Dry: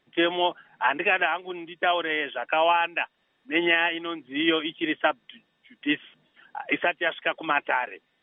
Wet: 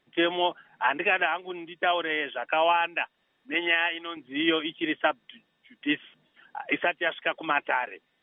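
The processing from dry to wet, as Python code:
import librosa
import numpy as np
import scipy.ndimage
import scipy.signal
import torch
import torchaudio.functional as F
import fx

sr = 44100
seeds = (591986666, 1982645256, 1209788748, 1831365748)

y = fx.highpass(x, sr, hz=610.0, slope=6, at=(3.54, 4.17))
y = y * librosa.db_to_amplitude(-1.5)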